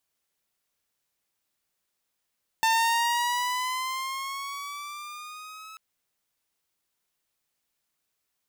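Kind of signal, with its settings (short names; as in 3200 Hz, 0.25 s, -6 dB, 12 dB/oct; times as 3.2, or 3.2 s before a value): gliding synth tone saw, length 3.14 s, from 894 Hz, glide +6.5 st, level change -22.5 dB, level -17 dB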